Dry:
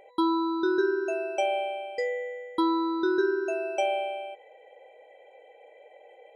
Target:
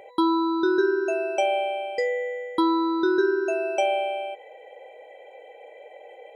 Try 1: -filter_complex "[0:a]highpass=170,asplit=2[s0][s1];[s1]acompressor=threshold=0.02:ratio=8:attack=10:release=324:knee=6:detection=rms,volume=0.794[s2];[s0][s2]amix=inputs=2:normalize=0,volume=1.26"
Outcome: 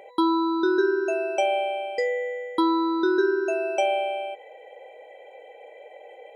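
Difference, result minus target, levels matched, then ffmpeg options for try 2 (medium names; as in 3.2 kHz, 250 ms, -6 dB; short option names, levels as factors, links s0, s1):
125 Hz band -3.5 dB
-filter_complex "[0:a]highpass=60,asplit=2[s0][s1];[s1]acompressor=threshold=0.02:ratio=8:attack=10:release=324:knee=6:detection=rms,volume=0.794[s2];[s0][s2]amix=inputs=2:normalize=0,volume=1.26"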